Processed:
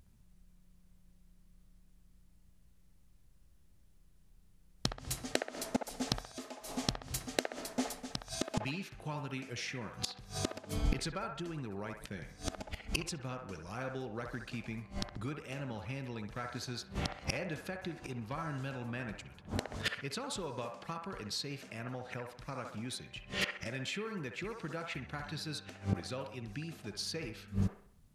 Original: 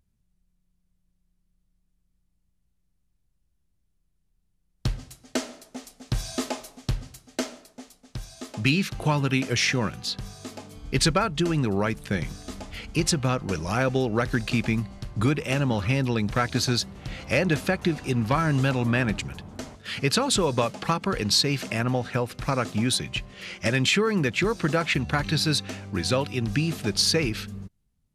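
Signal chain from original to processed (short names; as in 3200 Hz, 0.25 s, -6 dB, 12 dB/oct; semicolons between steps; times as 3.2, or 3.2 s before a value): flipped gate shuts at -27 dBFS, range -26 dB; band-limited delay 65 ms, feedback 44%, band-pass 1000 Hz, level -3 dB; gain +8.5 dB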